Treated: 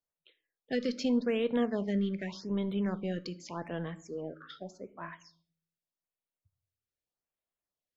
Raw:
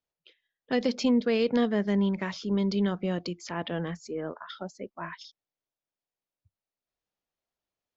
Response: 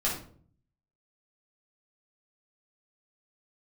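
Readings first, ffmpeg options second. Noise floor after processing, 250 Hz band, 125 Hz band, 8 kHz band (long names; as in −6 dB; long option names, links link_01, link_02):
below −85 dBFS, −5.0 dB, −5.0 dB, can't be measured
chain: -filter_complex "[0:a]aeval=exprs='0.168*(cos(1*acos(clip(val(0)/0.168,-1,1)))-cos(1*PI/2))+0.00211*(cos(7*acos(clip(val(0)/0.168,-1,1)))-cos(7*PI/2))':channel_layout=same,asplit=2[link_01][link_02];[1:a]atrim=start_sample=2205,asetrate=39690,aresample=44100[link_03];[link_02][link_03]afir=irnorm=-1:irlink=0,volume=-20dB[link_04];[link_01][link_04]amix=inputs=2:normalize=0,afftfilt=real='re*(1-between(b*sr/1024,780*pow(6000/780,0.5+0.5*sin(2*PI*0.84*pts/sr))/1.41,780*pow(6000/780,0.5+0.5*sin(2*PI*0.84*pts/sr))*1.41))':imag='im*(1-between(b*sr/1024,780*pow(6000/780,0.5+0.5*sin(2*PI*0.84*pts/sr))/1.41,780*pow(6000/780,0.5+0.5*sin(2*PI*0.84*pts/sr))*1.41))':win_size=1024:overlap=0.75,volume=-6dB"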